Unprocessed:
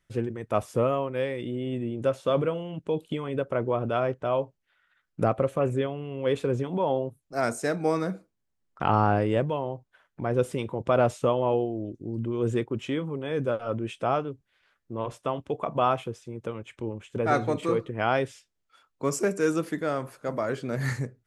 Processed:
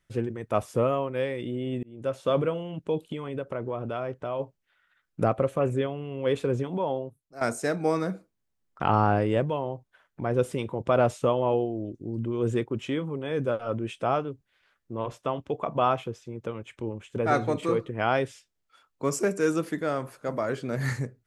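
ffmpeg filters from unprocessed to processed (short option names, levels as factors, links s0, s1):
-filter_complex "[0:a]asplit=3[s0][s1][s2];[s0]afade=t=out:st=3.07:d=0.02[s3];[s1]acompressor=threshold=0.0282:ratio=2:attack=3.2:release=140:knee=1:detection=peak,afade=t=in:st=3.07:d=0.02,afade=t=out:st=4.39:d=0.02[s4];[s2]afade=t=in:st=4.39:d=0.02[s5];[s3][s4][s5]amix=inputs=3:normalize=0,asettb=1/sr,asplit=3[s6][s7][s8];[s6]atrim=end=15.074[s9];[s7]atrim=start=15.07:end=16.6,asetpts=PTS-STARTPTS,afade=t=in:d=0.004:c=qsin,afade=t=out:st=1.526:d=0.004:c=qsin,equalizer=f=9400:t=o:w=0.39:g=-7.5[s10];[s8]atrim=start=16.596[s11];[s9][s10]acrossfade=d=0.004:c1=hsin:c2=qsin[s12];[s12][s11]acrossfade=d=0.004:c1=qsin:c2=hsin,asplit=3[s13][s14][s15];[s13]atrim=end=1.83,asetpts=PTS-STARTPTS,afade=t=out:st=1.826:d=0.004:c=hsin[s16];[s14]atrim=start=1.83:end=7.41,asetpts=PTS-STARTPTS,afade=t=in:d=0.41,afade=t=out:st=4.77:d=0.81:silence=0.199526[s17];[s15]atrim=start=7.41,asetpts=PTS-STARTPTS,afade=t=in:d=0.004:c=hsin:silence=0.199526[s18];[s16][s17][s18]concat=n=3:v=0:a=1"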